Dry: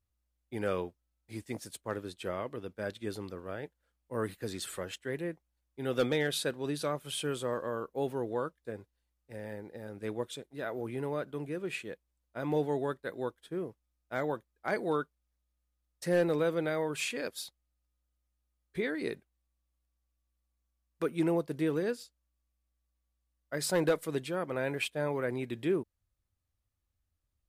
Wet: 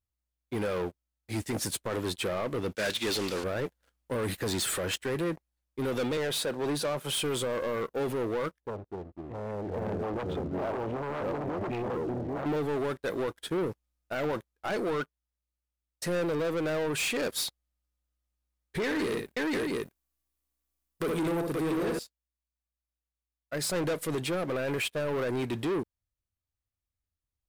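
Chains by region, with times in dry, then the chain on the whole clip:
2.75–3.44 CVSD 64 kbps + weighting filter D + hard clip -28 dBFS
6.17–7.19 HPF 99 Hz 24 dB/oct + bell 720 Hz +6 dB 2 oct
8.6–12.46 LPF 1000 Hz + echoes that change speed 0.234 s, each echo -3 st, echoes 2, each echo -6 dB + core saturation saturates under 3200 Hz
18.84–21.99 high shelf 9400 Hz +10 dB + tapped delay 64/83/120/525/691 ms -7.5/-17.5/-17/-4/-8.5 dB
whole clip: vocal rider 0.5 s; limiter -25.5 dBFS; sample leveller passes 3

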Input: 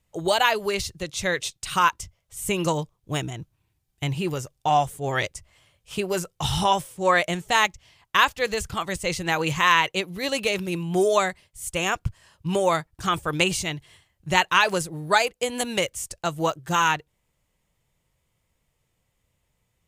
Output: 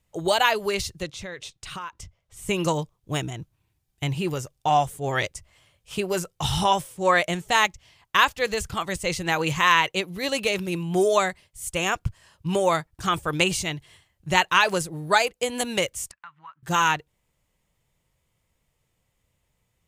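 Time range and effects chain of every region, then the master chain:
1.06–2.49 LPF 3400 Hz 6 dB/oct + compressor 4:1, threshold -34 dBFS
16.11–16.63 EQ curve 140 Hz 0 dB, 230 Hz +4 dB, 400 Hz -27 dB, 680 Hz -17 dB, 970 Hz +5 dB, 1900 Hz -1 dB, 10000 Hz -30 dB + compressor 4:1, threshold -37 dBFS + band-pass 2000 Hz, Q 0.96
whole clip: dry

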